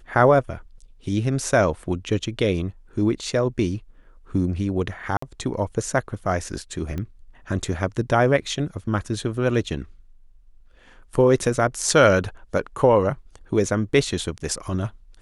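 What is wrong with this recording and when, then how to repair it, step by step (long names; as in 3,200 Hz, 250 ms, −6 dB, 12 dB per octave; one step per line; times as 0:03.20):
0:05.17–0:05.22: drop-out 54 ms
0:06.98: click −18 dBFS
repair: click removal
repair the gap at 0:05.17, 54 ms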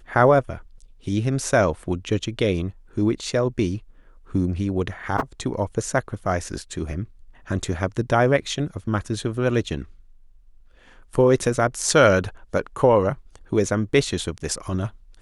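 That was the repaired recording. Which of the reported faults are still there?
none of them is left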